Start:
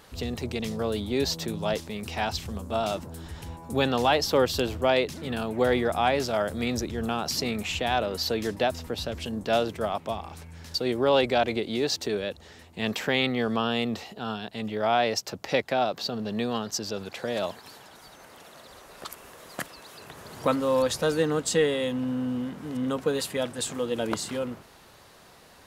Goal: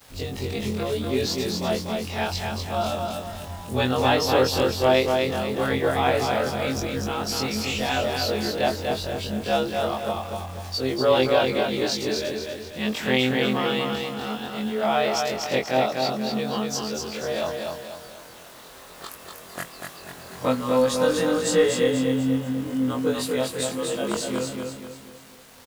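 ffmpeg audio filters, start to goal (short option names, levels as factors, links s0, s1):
-af "afftfilt=real='re':imag='-im':win_size=2048:overlap=0.75,acrusher=bits=8:mix=0:aa=0.000001,aecho=1:1:243|486|729|972|1215:0.631|0.271|0.117|0.0502|0.0216,volume=1.88"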